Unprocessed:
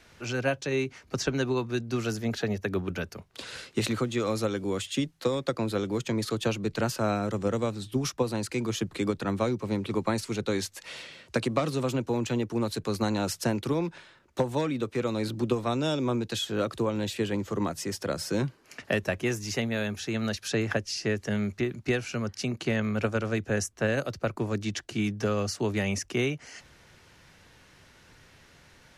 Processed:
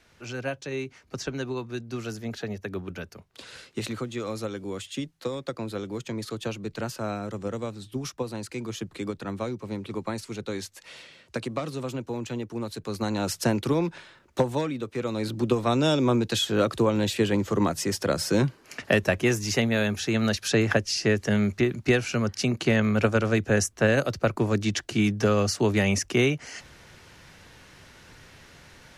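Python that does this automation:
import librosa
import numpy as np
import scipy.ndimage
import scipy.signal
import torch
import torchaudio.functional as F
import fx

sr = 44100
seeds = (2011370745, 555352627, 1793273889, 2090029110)

y = fx.gain(x, sr, db=fx.line((12.79, -4.0), (13.44, 3.5), (14.41, 3.5), (14.82, -2.5), (15.8, 5.5)))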